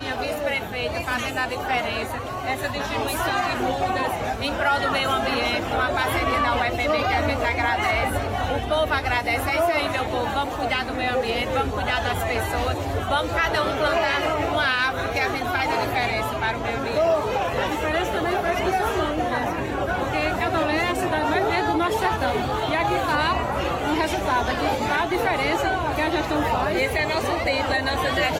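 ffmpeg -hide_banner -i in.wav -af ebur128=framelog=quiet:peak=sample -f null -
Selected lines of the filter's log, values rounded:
Integrated loudness:
  I:         -23.0 LUFS
  Threshold: -33.0 LUFS
Loudness range:
  LRA:         2.0 LU
  Threshold: -43.0 LUFS
  LRA low:   -24.1 LUFS
  LRA high:  -22.1 LUFS
Sample peak:
  Peak:      -10.7 dBFS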